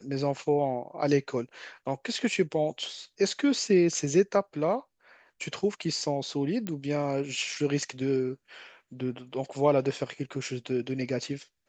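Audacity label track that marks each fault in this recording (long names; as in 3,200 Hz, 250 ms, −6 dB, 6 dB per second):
6.670000	6.670000	click −19 dBFS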